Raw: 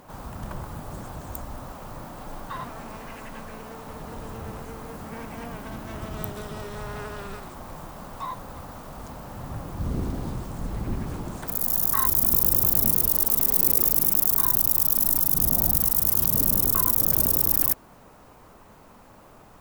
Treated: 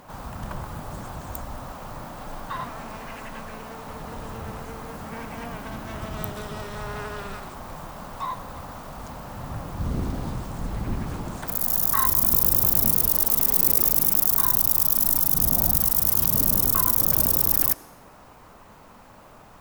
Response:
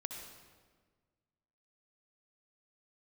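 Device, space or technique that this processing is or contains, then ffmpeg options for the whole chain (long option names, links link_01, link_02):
filtered reverb send: -filter_complex "[0:a]asplit=2[link_01][link_02];[link_02]highpass=frequency=340:width=0.5412,highpass=frequency=340:width=1.3066,lowpass=7600[link_03];[1:a]atrim=start_sample=2205[link_04];[link_03][link_04]afir=irnorm=-1:irlink=0,volume=-7.5dB[link_05];[link_01][link_05]amix=inputs=2:normalize=0,volume=1dB"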